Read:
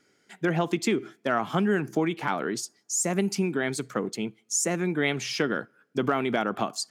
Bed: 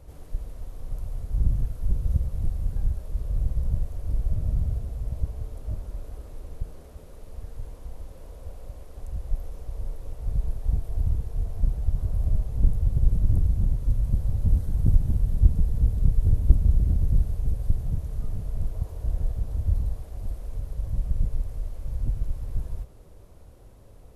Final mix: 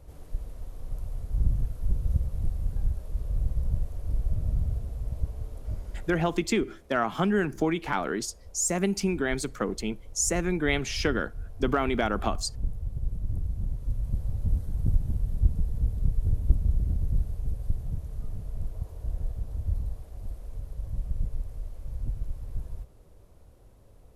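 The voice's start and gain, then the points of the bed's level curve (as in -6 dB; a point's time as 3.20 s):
5.65 s, -0.5 dB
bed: 6.26 s -2 dB
6.53 s -10 dB
13.17 s -10 dB
14.20 s -5 dB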